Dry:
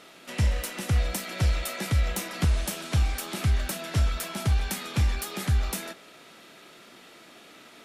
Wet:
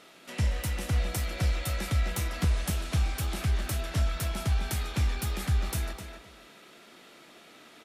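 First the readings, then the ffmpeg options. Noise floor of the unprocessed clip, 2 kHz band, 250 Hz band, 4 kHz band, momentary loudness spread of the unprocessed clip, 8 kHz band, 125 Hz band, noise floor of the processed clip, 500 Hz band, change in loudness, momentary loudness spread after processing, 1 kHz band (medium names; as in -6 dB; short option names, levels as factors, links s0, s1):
-51 dBFS, -2.5 dB, -2.5 dB, -3.0 dB, 4 LU, -3.0 dB, -2.5 dB, -54 dBFS, -2.5 dB, -2.5 dB, 4 LU, -2.5 dB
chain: -filter_complex "[0:a]asplit=2[s0][s1];[s1]adelay=256,lowpass=f=4100:p=1,volume=0.531,asplit=2[s2][s3];[s3]adelay=256,lowpass=f=4100:p=1,volume=0.22,asplit=2[s4][s5];[s5]adelay=256,lowpass=f=4100:p=1,volume=0.22[s6];[s0][s2][s4][s6]amix=inputs=4:normalize=0,volume=0.668"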